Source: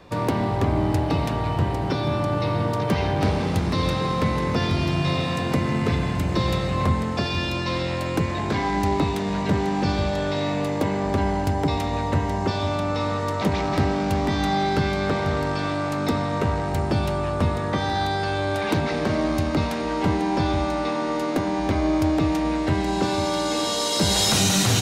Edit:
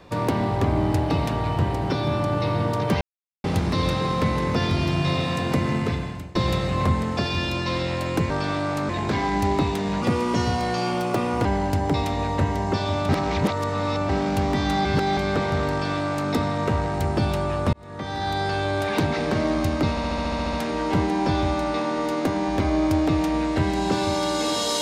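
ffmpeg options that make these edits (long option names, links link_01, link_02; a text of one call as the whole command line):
ffmpeg -i in.wav -filter_complex "[0:a]asplit=22[link_01][link_02][link_03][link_04][link_05][link_06][link_07][link_08][link_09][link_10][link_11][link_12][link_13][link_14][link_15][link_16][link_17][link_18][link_19][link_20][link_21][link_22];[link_01]atrim=end=3.01,asetpts=PTS-STARTPTS,afade=type=out:start_time=3.006:duration=0.004:curve=hsin[link_23];[link_02]atrim=start=3.01:end=3.44,asetpts=PTS-STARTPTS,volume=0[link_24];[link_03]atrim=start=3.44:end=6.35,asetpts=PTS-STARTPTS,afade=type=in:duration=0.004:curve=hsin,afade=type=out:start_time=2.28:duration=0.63:silence=0.0841395[link_25];[link_04]atrim=start=6.35:end=8.302,asetpts=PTS-STARTPTS,afade=type=in:duration=0.004:curve=hsin:silence=0.0841395[link_26];[link_05]atrim=start=15.448:end=16.042[link_27];[link_06]atrim=start=8.298:end=9.434[link_28];[link_07]atrim=start=9.43:end=11.19,asetpts=PTS-STARTPTS,asetrate=54243,aresample=44100,atrim=end_sample=63102,asetpts=PTS-STARTPTS[link_29];[link_08]atrim=start=11.186:end=12.832[link_30];[link_09]atrim=start=12.828:end=13.832,asetpts=PTS-STARTPTS,areverse[link_31];[link_10]atrim=start=13.828:end=14.592[link_32];[link_11]atrim=start=14.588:end=14.912,asetpts=PTS-STARTPTS,areverse[link_33];[link_12]atrim=start=14.908:end=17.47,asetpts=PTS-STARTPTS,afade=type=out:start_time=2.558:duration=0.004:curve=hsin[link_34];[link_13]atrim=start=17.47:end=19.712,asetpts=PTS-STARTPTS,afade=type=in:duration=0.71[link_35];[link_14]atrim=start=19.638:end=19.712[link_36];[link_15]atrim=start=19.638:end=19.712[link_37];[link_16]atrim=start=19.638:end=19.712[link_38];[link_17]atrim=start=19.638:end=19.712[link_39];[link_18]atrim=start=19.638:end=19.712[link_40];[link_19]atrim=start=19.638:end=19.712[link_41];[link_20]atrim=start=19.638:end=19.712[link_42];[link_21]atrim=start=19.638:end=19.712[link_43];[link_22]atrim=start=19.638[link_44];[link_23][link_24][link_25][link_26]concat=n=4:v=0:a=1[link_45];[link_45][link_27]acrossfade=duration=0.004:curve1=hsin:curve2=hsin[link_46];[link_46][link_28]acrossfade=duration=0.004:curve1=hsin:curve2=hsin[link_47];[link_47][link_29]acrossfade=duration=0.004:curve1=hsin:curve2=hsin[link_48];[link_48][link_30]acrossfade=duration=0.004:curve1=hsin:curve2=hsin[link_49];[link_49][link_31]acrossfade=duration=0.004:curve1=hsin:curve2=hsin[link_50];[link_50][link_32]acrossfade=duration=0.004:curve1=hsin:curve2=hsin[link_51];[link_51][link_33]acrossfade=duration=0.004:curve1=hsin:curve2=hsin[link_52];[link_34][link_35]concat=n=2:v=0:a=1[link_53];[link_52][link_53]acrossfade=duration=0.004:curve1=hsin:curve2=hsin[link_54];[link_54][link_36]acrossfade=duration=0.004:curve1=hsin:curve2=hsin[link_55];[link_55][link_37]acrossfade=duration=0.004:curve1=hsin:curve2=hsin[link_56];[link_56][link_38]acrossfade=duration=0.004:curve1=hsin:curve2=hsin[link_57];[link_57][link_39]acrossfade=duration=0.004:curve1=hsin:curve2=hsin[link_58];[link_58][link_40]acrossfade=duration=0.004:curve1=hsin:curve2=hsin[link_59];[link_59][link_41]acrossfade=duration=0.004:curve1=hsin:curve2=hsin[link_60];[link_60][link_42]acrossfade=duration=0.004:curve1=hsin:curve2=hsin[link_61];[link_61][link_43]acrossfade=duration=0.004:curve1=hsin:curve2=hsin[link_62];[link_62][link_44]acrossfade=duration=0.004:curve1=hsin:curve2=hsin" out.wav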